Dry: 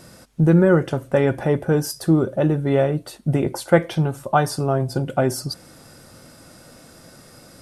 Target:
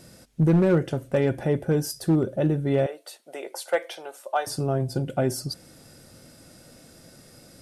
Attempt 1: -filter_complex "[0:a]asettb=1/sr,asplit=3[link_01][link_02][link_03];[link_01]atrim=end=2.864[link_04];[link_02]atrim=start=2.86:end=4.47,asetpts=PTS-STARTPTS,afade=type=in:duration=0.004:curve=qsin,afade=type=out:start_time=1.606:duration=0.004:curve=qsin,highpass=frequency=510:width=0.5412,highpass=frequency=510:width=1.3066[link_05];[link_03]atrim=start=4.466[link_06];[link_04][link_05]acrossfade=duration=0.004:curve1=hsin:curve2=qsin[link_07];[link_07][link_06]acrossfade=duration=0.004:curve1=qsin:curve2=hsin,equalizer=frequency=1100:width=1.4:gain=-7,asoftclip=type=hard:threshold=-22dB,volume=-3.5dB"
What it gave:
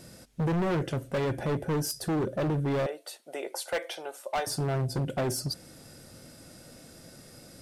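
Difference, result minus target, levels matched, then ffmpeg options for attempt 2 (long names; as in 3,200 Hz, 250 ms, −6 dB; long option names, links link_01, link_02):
hard clipping: distortion +15 dB
-filter_complex "[0:a]asettb=1/sr,asplit=3[link_01][link_02][link_03];[link_01]atrim=end=2.864[link_04];[link_02]atrim=start=2.86:end=4.47,asetpts=PTS-STARTPTS,afade=type=in:duration=0.004:curve=qsin,afade=type=out:start_time=1.606:duration=0.004:curve=qsin,highpass=frequency=510:width=0.5412,highpass=frequency=510:width=1.3066[link_05];[link_03]atrim=start=4.466[link_06];[link_04][link_05]acrossfade=duration=0.004:curve1=hsin:curve2=qsin[link_07];[link_07][link_06]acrossfade=duration=0.004:curve1=qsin:curve2=hsin,equalizer=frequency=1100:width=1.4:gain=-7,asoftclip=type=hard:threshold=-10.5dB,volume=-3.5dB"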